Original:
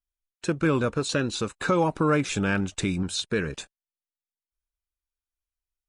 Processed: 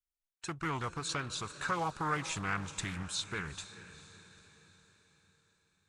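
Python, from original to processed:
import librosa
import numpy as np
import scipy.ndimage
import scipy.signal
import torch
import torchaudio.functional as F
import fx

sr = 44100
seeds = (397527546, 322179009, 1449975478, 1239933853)

y = fx.graphic_eq(x, sr, hz=(250, 500, 1000, 8000), db=(-11, -9, 4, 3))
y = fx.echo_diffused(y, sr, ms=461, feedback_pct=50, wet_db=-14.0)
y = fx.doppler_dist(y, sr, depth_ms=0.43)
y = F.gain(torch.from_numpy(y), -7.5).numpy()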